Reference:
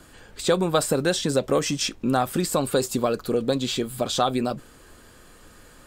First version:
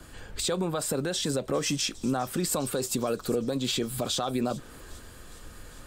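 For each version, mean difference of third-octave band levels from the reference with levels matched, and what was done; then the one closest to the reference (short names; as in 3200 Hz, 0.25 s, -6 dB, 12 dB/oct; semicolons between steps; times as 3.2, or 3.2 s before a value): 4.5 dB: compressor 2.5:1, threshold -35 dBFS, peak gain reduction 13 dB; limiter -26.5 dBFS, peak gain reduction 7.5 dB; thin delay 0.406 s, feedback 74%, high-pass 5100 Hz, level -13.5 dB; three-band expander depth 40%; gain +7.5 dB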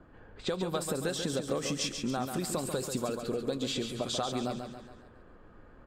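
6.5 dB: low-pass opened by the level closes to 1100 Hz, open at -21 dBFS; compressor, threshold -25 dBFS, peak gain reduction 9.5 dB; on a send: feedback echo 0.139 s, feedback 48%, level -7 dB; on the sum: gain -4.5 dB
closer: first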